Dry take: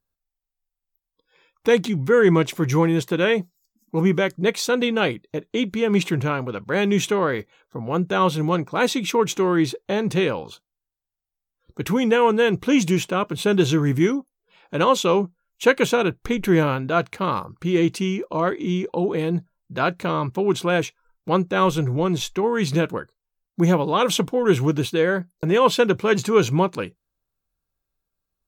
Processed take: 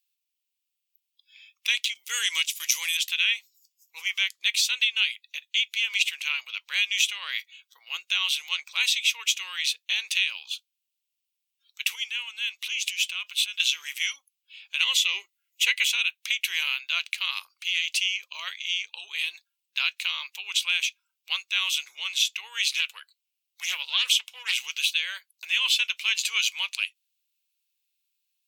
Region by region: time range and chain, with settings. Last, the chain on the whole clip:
0:01.94–0:02.97: noise gate −25 dBFS, range −13 dB + bass and treble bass +15 dB, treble +15 dB
0:11.95–0:13.60: downward compressor 16 to 1, threshold −24 dBFS + parametric band 340 Hz −3.5 dB 1.4 octaves
0:14.82–0:15.92: high-shelf EQ 7,600 Hz +4 dB + hollow resonant body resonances 370/2,000 Hz, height 16 dB, ringing for 35 ms
0:22.71–0:24.58: Butterworth high-pass 410 Hz 48 dB per octave + highs frequency-modulated by the lows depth 0.22 ms
whole clip: high-pass filter 1,400 Hz 24 dB per octave; high shelf with overshoot 2,000 Hz +10.5 dB, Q 3; downward compressor 3 to 1, threshold −17 dBFS; level −4 dB

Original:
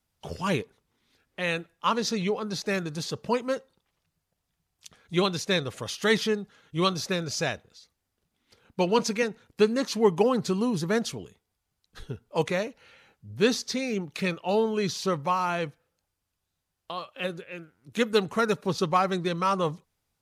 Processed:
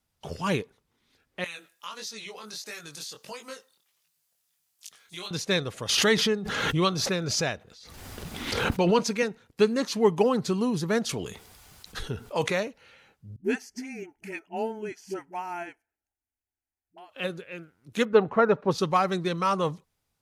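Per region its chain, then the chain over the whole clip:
0:01.44–0:05.31: spectral tilt +4.5 dB per octave + downward compressor 3 to 1, threshold −35 dBFS + chorus effect 1.5 Hz, delay 18 ms, depth 5.8 ms
0:05.89–0:08.99: high-shelf EQ 4,800 Hz −4 dB + background raised ahead of every attack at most 29 dB per second
0:11.09–0:12.60: low-shelf EQ 460 Hz −5 dB + envelope flattener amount 50%
0:13.36–0:17.10: phaser with its sweep stopped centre 770 Hz, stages 8 + all-pass dispersion highs, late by 80 ms, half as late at 300 Hz + expander for the loud parts, over −43 dBFS
0:18.05–0:18.71: low-pass filter 2,000 Hz + dynamic equaliser 700 Hz, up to +7 dB, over −36 dBFS, Q 0.75
whole clip: no processing

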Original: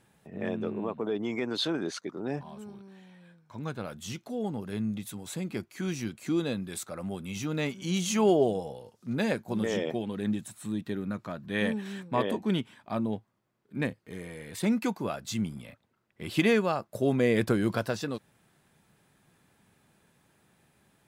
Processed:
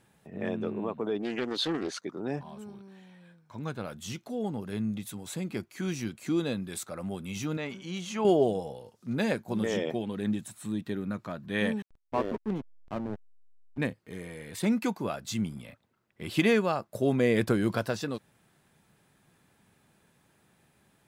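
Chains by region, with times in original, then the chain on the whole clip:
0:01.19–0:01.94: parametric band 75 Hz −3.5 dB 1.7 octaves + highs frequency-modulated by the lows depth 0.27 ms
0:07.57–0:08.25: low-pass filter 1,900 Hz 6 dB per octave + low-shelf EQ 420 Hz −9.5 dB + level that may fall only so fast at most 85 dB per second
0:11.82–0:13.78: three-way crossover with the lows and the highs turned down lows −20 dB, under 170 Hz, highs −23 dB, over 2,000 Hz + slack as between gear wheels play −28 dBFS
whole clip: no processing

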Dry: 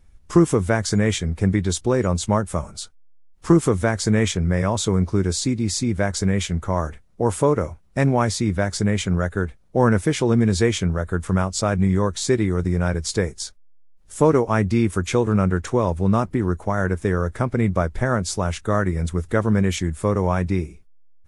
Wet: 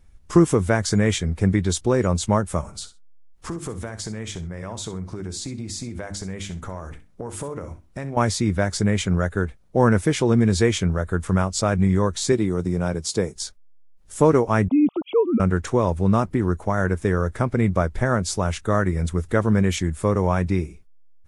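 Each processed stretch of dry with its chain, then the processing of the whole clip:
0:02.61–0:08.17: mains-hum notches 50/100/150/200/250/300/350 Hz + downward compressor, threshold −28 dBFS + repeating echo 64 ms, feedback 17%, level −13.5 dB
0:12.32–0:13.36: high-pass filter 120 Hz + parametric band 1,800 Hz −7 dB 0.98 octaves
0:14.68–0:15.40: three sine waves on the formant tracks + Butterworth band-reject 1,700 Hz, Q 0.89
whole clip: no processing

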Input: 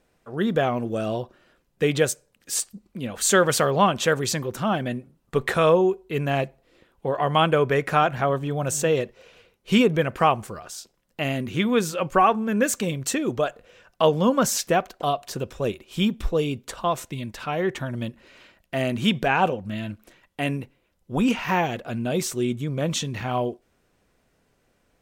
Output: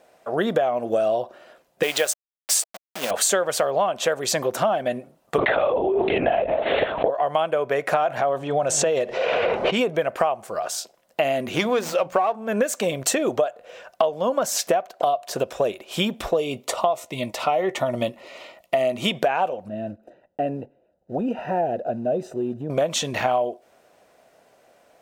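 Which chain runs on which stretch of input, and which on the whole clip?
0:01.83–0:03.11: hold until the input has moved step −34 dBFS + low-pass filter 3,100 Hz 6 dB per octave + spectral tilt +4.5 dB per octave
0:05.38–0:07.10: linear-prediction vocoder at 8 kHz whisper + envelope flattener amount 100%
0:07.94–0:09.90: transient designer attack −5 dB, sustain +4 dB + low-pass that shuts in the quiet parts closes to 1,500 Hz, open at −18.5 dBFS + background raised ahead of every attack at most 29 dB per second
0:11.55–0:12.42: mains-hum notches 60/120/180/240 Hz + windowed peak hold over 3 samples
0:16.37–0:19.12: Butterworth band-reject 1,600 Hz, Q 4.7 + double-tracking delay 16 ms −14 dB
0:19.68–0:22.70: one scale factor per block 5 bits + moving average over 40 samples + downward compressor 2 to 1, threshold −30 dBFS
whole clip: high-pass filter 440 Hz 6 dB per octave; parametric band 650 Hz +13 dB 0.73 octaves; downward compressor 12 to 1, threshold −26 dBFS; level +8 dB

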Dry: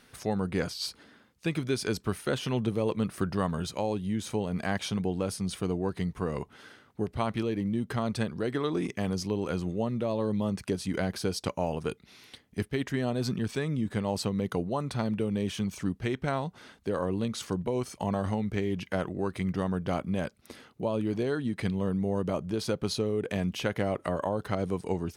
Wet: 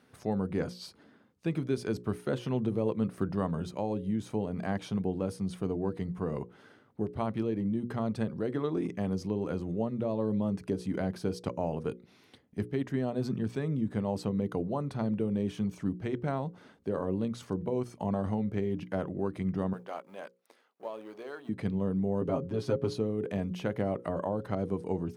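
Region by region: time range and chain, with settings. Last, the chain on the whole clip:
0:19.73–0:21.49: mu-law and A-law mismatch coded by A + high-pass filter 700 Hz
0:22.21–0:22.94: high-shelf EQ 7,200 Hz −8 dB + comb filter 7.4 ms, depth 97%
whole clip: high-pass filter 94 Hz; tilt shelving filter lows +6.5 dB, about 1,300 Hz; mains-hum notches 60/120/180/240/300/360/420/480/540 Hz; level −6 dB

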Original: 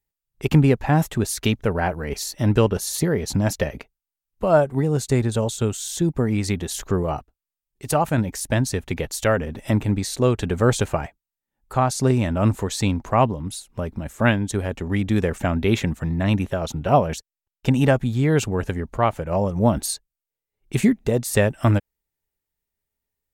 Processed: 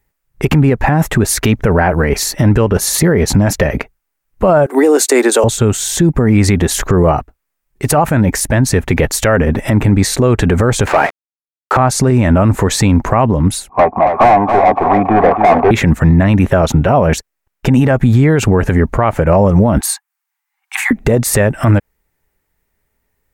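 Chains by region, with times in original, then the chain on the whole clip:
0:04.66–0:05.44: Butterworth high-pass 280 Hz 48 dB per octave + high-shelf EQ 3,900 Hz +10 dB
0:10.87–0:11.77: hold until the input has moved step −44 dBFS + band-pass filter 380–4,700 Hz + leveller curve on the samples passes 3
0:13.69–0:15.71: formant resonators in series a + mid-hump overdrive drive 35 dB, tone 1,300 Hz, clips at −17 dBFS + repeating echo 279 ms, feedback 21%, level −7.5 dB
0:19.81–0:20.91: Chebyshev high-pass filter 750 Hz, order 10 + dynamic equaliser 4,800 Hz, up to −6 dB, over −43 dBFS, Q 0.96
whole clip: high shelf with overshoot 2,600 Hz −6 dB, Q 1.5; downward compressor, threshold −18 dBFS; boost into a limiter +19.5 dB; level −1 dB

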